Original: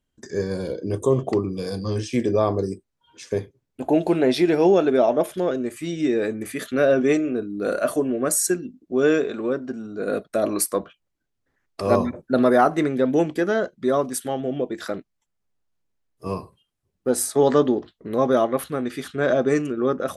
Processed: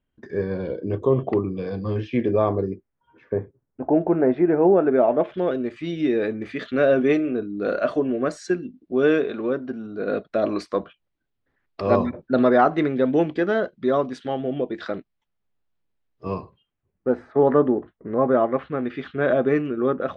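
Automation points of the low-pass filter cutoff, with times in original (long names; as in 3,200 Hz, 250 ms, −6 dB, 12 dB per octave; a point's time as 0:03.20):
low-pass filter 24 dB per octave
0:02.52 3,000 Hz
0:03.36 1,600 Hz
0:04.72 1,600 Hz
0:05.60 4,100 Hz
0:16.38 4,100 Hz
0:17.24 1,900 Hz
0:18.17 1,900 Hz
0:18.96 3,100 Hz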